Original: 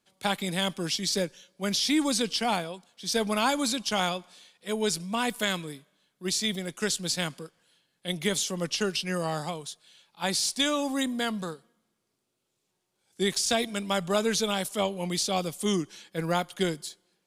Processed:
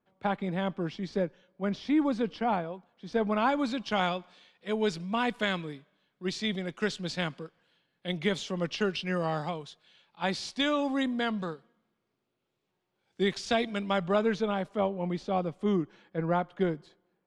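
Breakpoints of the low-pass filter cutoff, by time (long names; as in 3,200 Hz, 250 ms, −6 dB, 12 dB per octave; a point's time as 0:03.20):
0:03.10 1,400 Hz
0:04.07 2,900 Hz
0:13.82 2,900 Hz
0:14.64 1,400 Hz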